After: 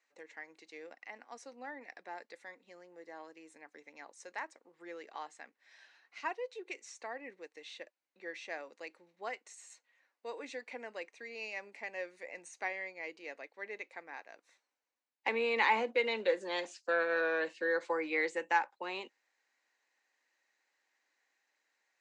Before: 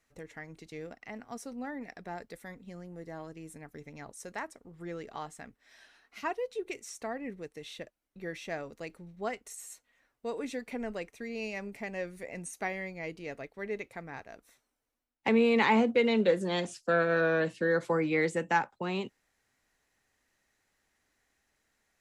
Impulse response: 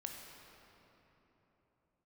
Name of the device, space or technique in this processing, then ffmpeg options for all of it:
phone speaker on a table: -af "highpass=f=390:w=0.5412,highpass=f=390:w=1.3066,equalizer=f=420:t=q:w=4:g=-9,equalizer=f=660:t=q:w=4:g=-7,equalizer=f=1.3k:t=q:w=4:g=-6,equalizer=f=3.3k:t=q:w=4:g=-5,equalizer=f=5.5k:t=q:w=4:g=-5,lowpass=f=6.5k:w=0.5412,lowpass=f=6.5k:w=1.3066"

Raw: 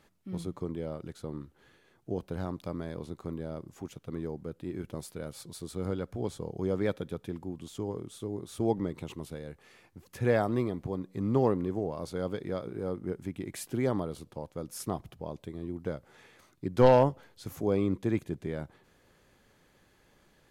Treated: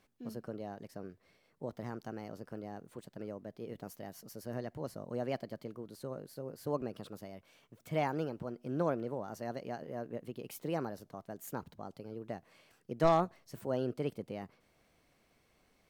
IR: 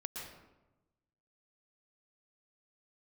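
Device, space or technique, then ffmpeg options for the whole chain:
nightcore: -af "asetrate=56889,aresample=44100,volume=-6.5dB"

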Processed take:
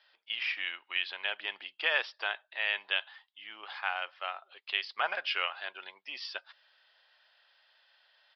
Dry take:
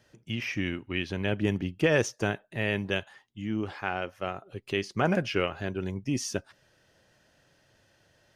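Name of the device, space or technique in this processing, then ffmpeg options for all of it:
musical greeting card: -af "aresample=11025,aresample=44100,highpass=f=810:w=0.5412,highpass=f=810:w=1.3066,bass=f=250:g=7,treble=f=4k:g=0,equalizer=f=3.5k:t=o:w=0.54:g=6.5"

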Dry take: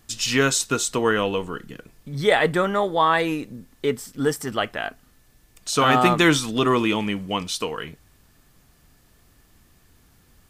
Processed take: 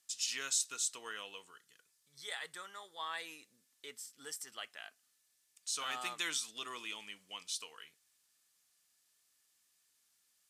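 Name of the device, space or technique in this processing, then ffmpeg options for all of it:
piezo pickup straight into a mixer: -filter_complex "[0:a]lowpass=8.9k,aderivative,asettb=1/sr,asplit=3[a][b][c];[a]atrim=end=1.514[d];[b]atrim=start=1.51:end=2.99,asetpts=PTS-STARTPTS,afade=t=in:d=0.004:c=qsin,afade=t=out:st=1.476:d=0.004:c=qsin,equalizer=f=250:t=o:w=0.67:g=-11,equalizer=f=630:t=o:w=0.67:g=-6,equalizer=f=2.5k:t=o:w=0.67:g=-5[e];[c]atrim=start=2.986[f];[d][e]acrossfade=d=0.004:c1=hsin:c2=qsin[g];[g][f]acrossfade=d=0.004:c1=qsin:c2=hsin,volume=-7.5dB"

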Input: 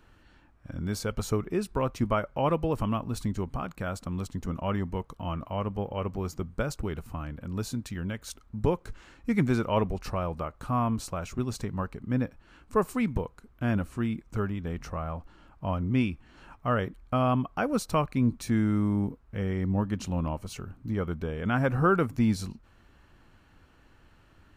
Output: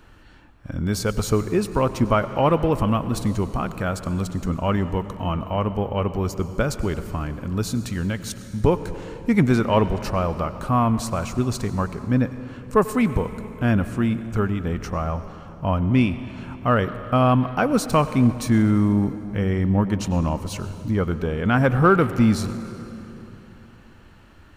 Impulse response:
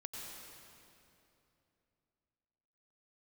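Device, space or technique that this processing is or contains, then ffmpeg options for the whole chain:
saturated reverb return: -filter_complex "[0:a]asplit=2[a][b];[1:a]atrim=start_sample=2205[c];[b][c]afir=irnorm=-1:irlink=0,asoftclip=type=tanh:threshold=-26.5dB,volume=-5dB[d];[a][d]amix=inputs=2:normalize=0,volume=6dB"

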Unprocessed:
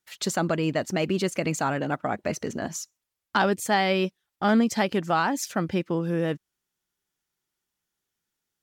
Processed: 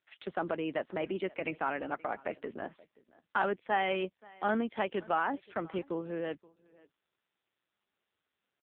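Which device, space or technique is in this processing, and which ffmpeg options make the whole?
satellite phone: -filter_complex "[0:a]asettb=1/sr,asplit=3[a][b][c];[a]atrim=end=1.464[d];[b]atrim=start=1.46:end=1.91,asetpts=PTS-STARTPTS,afade=t=in:d=0.004:c=qsin,afade=t=out:st=0.446:d=0.004:c=qsin,equalizer=f=2.3k:t=o:w=0.53:g=4.5[e];[c]atrim=start=1.906[f];[d][e]acrossfade=d=0.004:c1=hsin:c2=qsin[g];[g][f]acrossfade=d=0.004:c1=qsin:c2=hsin,highpass=f=110:w=0.5412,highpass=f=110:w=1.3066,highpass=310,lowpass=3.4k,aecho=1:1:528:0.0668,volume=-5.5dB" -ar 8000 -c:a libopencore_amrnb -b:a 5900

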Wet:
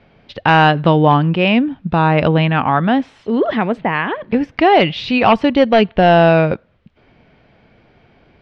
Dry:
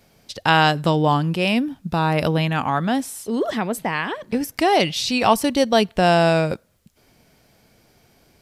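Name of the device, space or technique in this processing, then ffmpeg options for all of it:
synthesiser wavefolder: -filter_complex "[0:a]aeval=exprs='0.376*(abs(mod(val(0)/0.376+3,4)-2)-1)':c=same,lowpass=f=3.1k:w=0.5412,lowpass=f=3.1k:w=1.3066,asettb=1/sr,asplit=3[a][b][c];[a]atrim=end=3.814[d];[b]atrim=start=3.81:end=4.23,asetpts=PTS-STARTPTS,afade=t=in:d=0.004:c=qsin,afade=t=out:st=0.416:d=0.004:c=qsin,highshelf=f=5.6k:g=-11.5[e];[c]atrim=start=4.226[f];[d][e]acrossfade=d=0.004:c1=hsin:c2=qsin[g];[g][f]acrossfade=d=0.004:c1=qsin:c2=hsin,volume=6.5dB"

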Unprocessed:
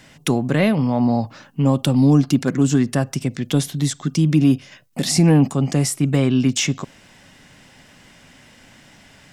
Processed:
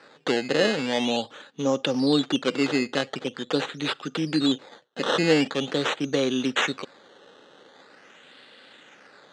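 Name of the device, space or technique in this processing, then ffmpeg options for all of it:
circuit-bent sampling toy: -af "acrusher=samples=13:mix=1:aa=0.000001:lfo=1:lforange=13:lforate=0.44,highpass=470,equalizer=f=480:t=q:w=4:g=5,equalizer=f=680:t=q:w=4:g=-8,equalizer=f=1k:t=q:w=4:g=-8,equalizer=f=2.2k:t=q:w=4:g=-6,equalizer=f=3.7k:t=q:w=4:g=4,equalizer=f=5.4k:t=q:w=4:g=-9,lowpass=f=6k:w=0.5412,lowpass=f=6k:w=1.3066,volume=2dB"

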